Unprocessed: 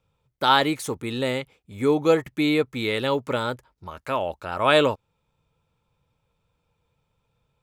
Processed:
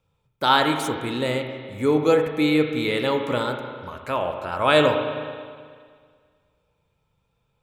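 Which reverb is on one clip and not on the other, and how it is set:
spring reverb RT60 1.9 s, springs 33/39 ms, chirp 55 ms, DRR 4.5 dB

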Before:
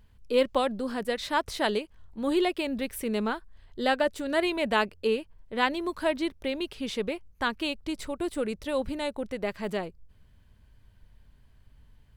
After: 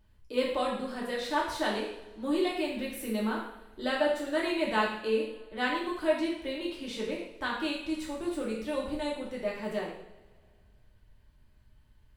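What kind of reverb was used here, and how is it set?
coupled-rooms reverb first 0.69 s, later 2.3 s, from −21 dB, DRR −4.5 dB
level −8.5 dB

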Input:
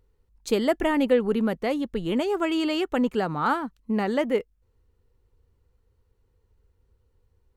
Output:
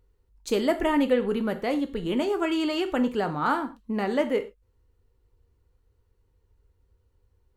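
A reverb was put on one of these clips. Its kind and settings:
reverb whose tail is shaped and stops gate 140 ms falling, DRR 7 dB
level −1.5 dB

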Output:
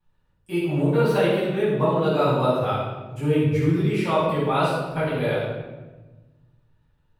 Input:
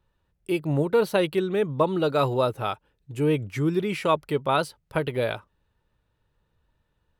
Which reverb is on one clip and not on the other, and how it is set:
rectangular room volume 770 cubic metres, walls mixed, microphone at 8.3 metres
level −12.5 dB

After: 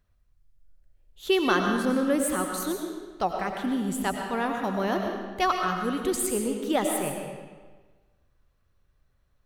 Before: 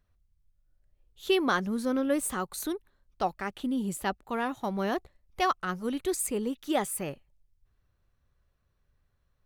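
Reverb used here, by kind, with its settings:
comb and all-pass reverb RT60 1.4 s, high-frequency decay 0.85×, pre-delay 65 ms, DRR 2.5 dB
level +2 dB

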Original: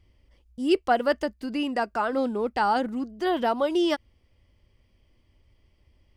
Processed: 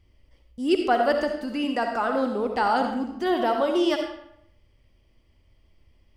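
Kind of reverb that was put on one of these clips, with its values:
comb and all-pass reverb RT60 0.72 s, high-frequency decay 0.8×, pre-delay 25 ms, DRR 3.5 dB

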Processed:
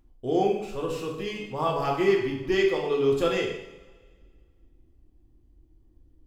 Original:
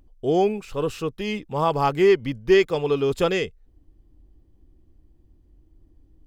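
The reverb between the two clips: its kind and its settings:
coupled-rooms reverb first 0.75 s, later 2 s, from −18 dB, DRR −1.5 dB
level −7 dB

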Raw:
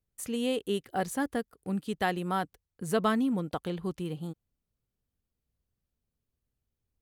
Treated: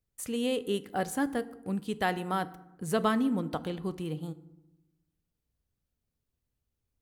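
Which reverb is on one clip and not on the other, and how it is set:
feedback delay network reverb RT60 0.94 s, low-frequency decay 1.45×, high-frequency decay 0.55×, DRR 13.5 dB

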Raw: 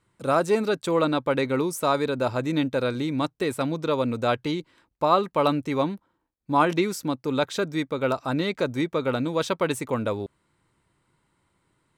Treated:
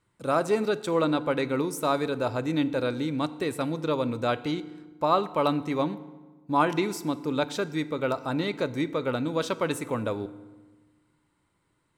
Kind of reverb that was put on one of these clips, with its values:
feedback delay network reverb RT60 1.3 s, low-frequency decay 1.3×, high-frequency decay 0.7×, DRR 13.5 dB
level −3 dB

